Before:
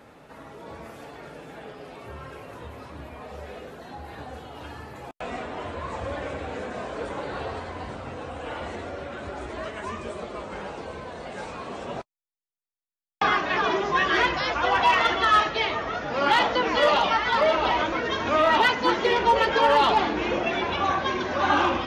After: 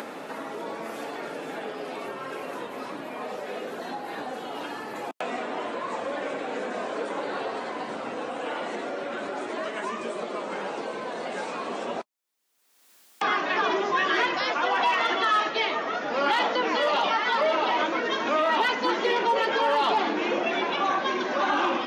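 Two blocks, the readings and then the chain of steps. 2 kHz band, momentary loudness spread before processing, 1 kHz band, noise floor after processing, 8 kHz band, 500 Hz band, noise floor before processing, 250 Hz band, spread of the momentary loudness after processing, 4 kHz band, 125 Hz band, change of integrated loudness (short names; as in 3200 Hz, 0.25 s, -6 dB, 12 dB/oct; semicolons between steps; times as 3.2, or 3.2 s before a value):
-1.5 dB, 21 LU, -2.0 dB, -57 dBFS, -0.5 dB, -1.0 dB, under -85 dBFS, -1.0 dB, 12 LU, -2.0 dB, -11.5 dB, -3.5 dB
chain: upward compressor, threshold -25 dBFS; HPF 210 Hz 24 dB/oct; limiter -15 dBFS, peak gain reduction 6.5 dB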